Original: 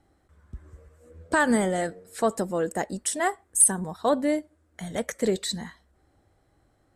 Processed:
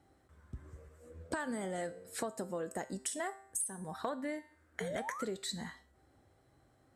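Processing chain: 4.8–5.25 painted sound rise 420–1500 Hz -33 dBFS; resonator 130 Hz, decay 0.41 s, harmonics all, mix 60%; 3.93–5.14 bell 1600 Hz +9.5 dB 0.95 oct; compressor 8:1, threshold -40 dBFS, peak gain reduction 19.5 dB; HPF 59 Hz; gain +4.5 dB

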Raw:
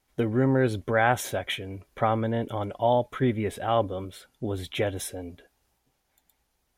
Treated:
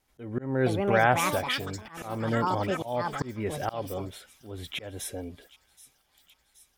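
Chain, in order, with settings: echoes that change speed 0.536 s, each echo +7 st, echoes 2, each echo -6 dB; auto swell 0.308 s; thin delay 0.775 s, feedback 66%, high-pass 3700 Hz, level -16 dB

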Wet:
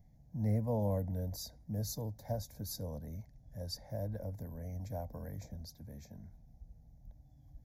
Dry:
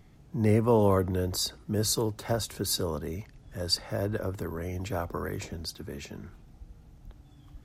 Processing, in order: band shelf 2100 Hz -14 dB 2.7 oct; fixed phaser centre 1900 Hz, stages 8; gain -5 dB

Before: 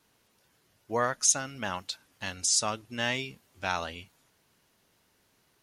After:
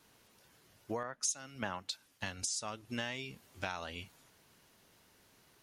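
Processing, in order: compressor 12:1, threshold -38 dBFS, peak gain reduction 20 dB; 1.03–2.43 three-band expander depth 70%; gain +3 dB

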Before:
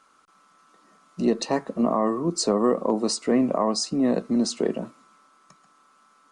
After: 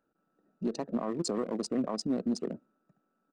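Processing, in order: Wiener smoothing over 41 samples; tempo 1.9×; limiter -17 dBFS, peak gain reduction 6.5 dB; gain -5.5 dB

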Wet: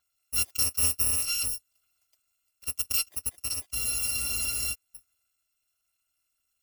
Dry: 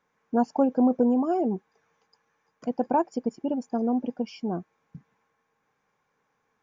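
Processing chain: FFT order left unsorted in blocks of 256 samples; spectral freeze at 3.77, 0.96 s; gain -4.5 dB

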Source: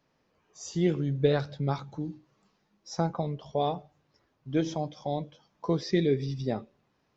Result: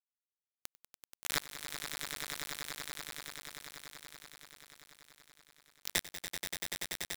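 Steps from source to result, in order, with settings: steep high-pass 1400 Hz 36 dB/oct; bit-crush 5-bit; swelling echo 96 ms, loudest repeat 8, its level -8.5 dB; gain +8.5 dB

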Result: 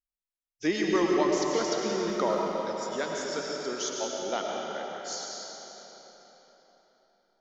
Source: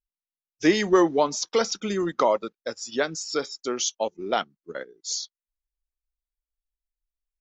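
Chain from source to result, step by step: 1.76–2.42 crackle 40/s -> 140/s -39 dBFS; digital reverb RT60 4.3 s, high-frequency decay 0.8×, pre-delay 65 ms, DRR -2 dB; gain -8 dB

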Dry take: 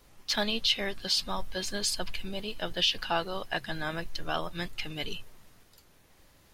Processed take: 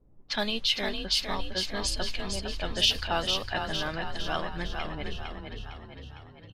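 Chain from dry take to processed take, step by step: low-pass opened by the level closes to 350 Hz, open at -24 dBFS; 1.97–3.08 high shelf 5100 Hz +9.5 dB; on a send: frequency-shifting echo 0.456 s, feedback 54%, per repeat +32 Hz, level -5.5 dB

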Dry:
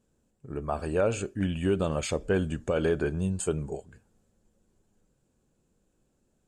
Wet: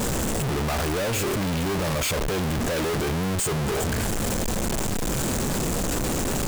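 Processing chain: infinite clipping; gain +6.5 dB

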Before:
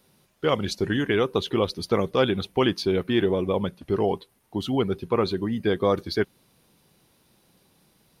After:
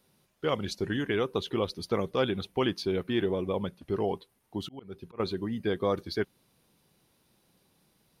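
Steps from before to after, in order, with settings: 4.61–5.2 auto swell 0.369 s; gain -6 dB

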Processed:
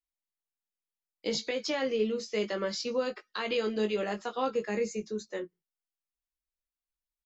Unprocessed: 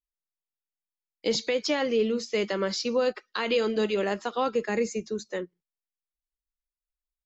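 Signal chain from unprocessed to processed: doubler 19 ms -5.5 dB; gain -5.5 dB

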